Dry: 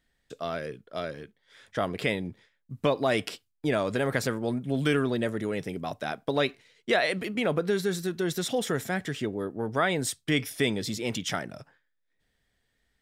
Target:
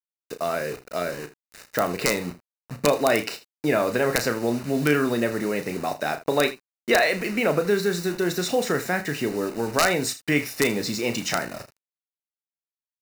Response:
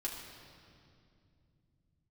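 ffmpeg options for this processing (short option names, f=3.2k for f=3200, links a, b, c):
-filter_complex "[0:a]highpass=f=240:p=1,equalizer=f=9.9k:t=o:w=0.67:g=-8.5,asplit=2[a][b];[b]acompressor=threshold=-38dB:ratio=4,volume=0dB[c];[a][c]amix=inputs=2:normalize=0,acrusher=bits=6:mix=0:aa=0.000001,aeval=exprs='(mod(3.76*val(0)+1,2)-1)/3.76':c=same,asuperstop=centerf=3300:order=4:qfactor=5.2,asplit=2[d][e];[e]aecho=0:1:34|80:0.355|0.15[f];[d][f]amix=inputs=2:normalize=0,volume=3.5dB"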